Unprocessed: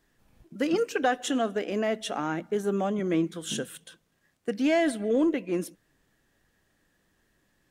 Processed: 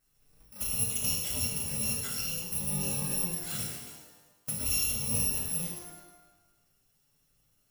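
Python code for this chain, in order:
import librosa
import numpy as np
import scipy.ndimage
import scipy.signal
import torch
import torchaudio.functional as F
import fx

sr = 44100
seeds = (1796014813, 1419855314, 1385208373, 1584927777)

p1 = fx.bit_reversed(x, sr, seeds[0], block=128)
p2 = 10.0 ** (-31.0 / 20.0) * np.tanh(p1 / 10.0 ** (-31.0 / 20.0))
p3 = p1 + (p2 * 10.0 ** (-5.0 / 20.0))
p4 = fx.env_flanger(p3, sr, rest_ms=7.4, full_db=-24.0)
p5 = fx.rev_shimmer(p4, sr, seeds[1], rt60_s=1.1, semitones=12, shimmer_db=-8, drr_db=-2.0)
y = p5 * 10.0 ** (-6.0 / 20.0)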